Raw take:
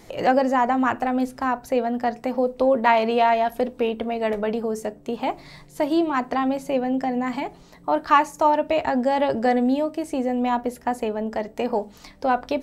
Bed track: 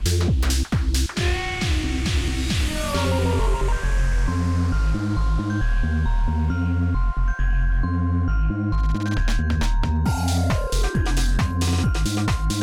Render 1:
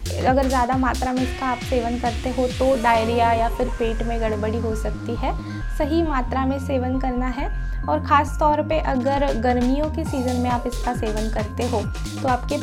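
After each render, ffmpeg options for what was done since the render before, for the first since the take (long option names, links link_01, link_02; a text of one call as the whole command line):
ffmpeg -i in.wav -i bed.wav -filter_complex "[1:a]volume=-6.5dB[link_01];[0:a][link_01]amix=inputs=2:normalize=0" out.wav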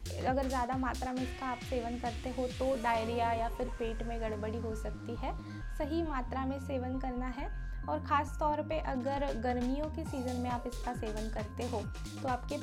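ffmpeg -i in.wav -af "volume=-14dB" out.wav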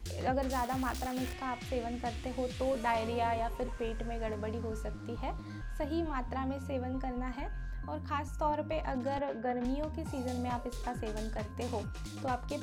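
ffmpeg -i in.wav -filter_complex "[0:a]asettb=1/sr,asplit=3[link_01][link_02][link_03];[link_01]atrim=end=0.524[link_04];[link_02]atrim=start=0.52:end=1.33,asetpts=PTS-STARTPTS,afade=type=in:duration=0.004:curve=qsin,afade=type=out:start_time=0.806:duration=0.004:curve=qsin,acrusher=bits=8:dc=4:mix=0:aa=0.000001[link_05];[link_03]atrim=start=1.326[link_06];[link_04][link_05]acrossfade=duration=0.004:curve1=hsin:curve2=qsin[link_07];[link_07][link_06]acrossfade=duration=0.004:curve1=qsin:curve2=hsin,asettb=1/sr,asplit=3[link_08][link_09][link_10];[link_08]atrim=end=7.884[link_11];[link_09]atrim=start=7.88:end=8.39,asetpts=PTS-STARTPTS,afade=type=in:duration=0.004:curve=qsin,afade=type=out:start_time=0.506:duration=0.004:curve=qsin,equalizer=frequency=930:width=0.42:gain=-6[link_12];[link_10]atrim=start=8.386[link_13];[link_11][link_12]acrossfade=duration=0.004:curve1=hsin:curve2=qsin[link_14];[link_14][link_13]acrossfade=duration=0.004:curve1=qsin:curve2=hsin,asettb=1/sr,asplit=3[link_15][link_16][link_17];[link_15]atrim=end=9.194[link_18];[link_16]atrim=start=9.19:end=9.65,asetpts=PTS-STARTPTS,afade=type=in:duration=0.004:curve=qsin,afade=type=out:start_time=0.456:duration=0.004:curve=qsin,highpass=190,lowpass=2200[link_19];[link_17]atrim=start=9.646[link_20];[link_18][link_19]acrossfade=duration=0.004:curve1=hsin:curve2=qsin[link_21];[link_21][link_20]acrossfade=duration=0.004:curve1=qsin:curve2=hsin" out.wav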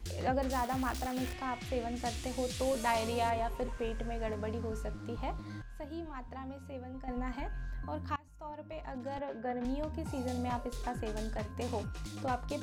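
ffmpeg -i in.wav -filter_complex "[0:a]asettb=1/sr,asplit=3[link_01][link_02][link_03];[link_01]atrim=end=1.964[link_04];[link_02]atrim=start=1.96:end=3.3,asetpts=PTS-STARTPTS,afade=type=in:duration=0.004:curve=qsin,afade=type=out:start_time=1.336:duration=0.004:curve=qsin,bass=frequency=250:gain=0,treble=frequency=4000:gain=11[link_05];[link_03]atrim=start=3.296[link_06];[link_04][link_05]acrossfade=duration=0.004:curve1=hsin:curve2=qsin[link_07];[link_07][link_06]acrossfade=duration=0.004:curve1=qsin:curve2=hsin,asplit=4[link_08][link_09][link_10][link_11];[link_08]atrim=end=5.622[link_12];[link_09]atrim=start=5.618:end=7.082,asetpts=PTS-STARTPTS,volume=-8dB[link_13];[link_10]atrim=start=7.078:end=8.16,asetpts=PTS-STARTPTS,afade=type=out:start_time=1.078:duration=0.004:curve=hsin:silence=0.0668344[link_14];[link_11]atrim=start=8.16,asetpts=PTS-STARTPTS,afade=type=in:duration=1.86:silence=0.0668344[link_15];[link_12][link_13]acrossfade=duration=0.004:curve1=hsin:curve2=hsin[link_16];[link_14][link_15]concat=n=2:v=0:a=1[link_17];[link_16][link_17]acrossfade=duration=0.004:curve1=hsin:curve2=hsin" out.wav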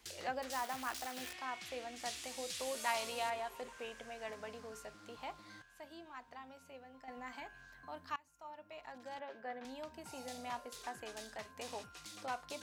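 ffmpeg -i in.wav -af "highpass=frequency=1400:poles=1" out.wav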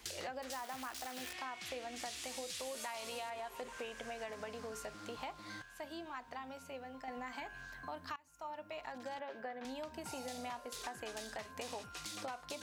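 ffmpeg -i in.wav -filter_complex "[0:a]asplit=2[link_01][link_02];[link_02]alimiter=level_in=9dB:limit=-24dB:level=0:latency=1,volume=-9dB,volume=3dB[link_03];[link_01][link_03]amix=inputs=2:normalize=0,acompressor=threshold=-41dB:ratio=6" out.wav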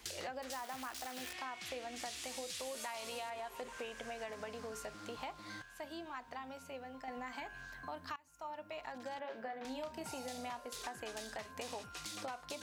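ffmpeg -i in.wav -filter_complex "[0:a]asettb=1/sr,asplit=3[link_01][link_02][link_03];[link_01]atrim=end=9.214[link_04];[link_02]atrim=start=9.21:end=10.06,asetpts=PTS-STARTPTS,afade=type=in:duration=0.004:curve=qsin,afade=type=out:start_time=0.846:duration=0.004:curve=qsin,asplit=2[link_05][link_06];[link_06]adelay=31,volume=-7dB[link_07];[link_05][link_07]amix=inputs=2:normalize=0,atrim=end_sample=37485[link_08];[link_03]atrim=start=10.056[link_09];[link_04][link_08]acrossfade=duration=0.004:curve1=hsin:curve2=qsin[link_10];[link_10][link_09]acrossfade=duration=0.004:curve1=qsin:curve2=hsin" out.wav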